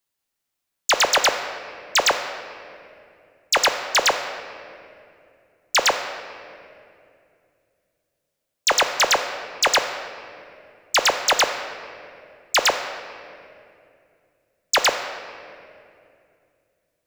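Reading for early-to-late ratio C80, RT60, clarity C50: 9.0 dB, 2.5 s, 8.0 dB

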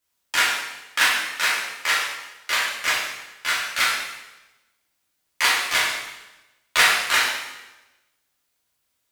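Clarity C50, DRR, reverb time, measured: 1.0 dB, −7.5 dB, 1.0 s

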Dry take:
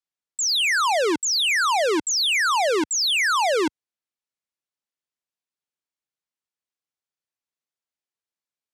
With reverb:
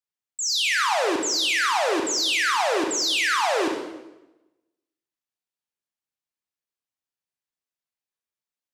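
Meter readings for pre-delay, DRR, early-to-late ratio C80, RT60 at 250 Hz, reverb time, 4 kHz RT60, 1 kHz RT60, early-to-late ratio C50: 27 ms, 1.5 dB, 6.0 dB, 1.1 s, 1.0 s, 0.85 s, 0.95 s, 3.5 dB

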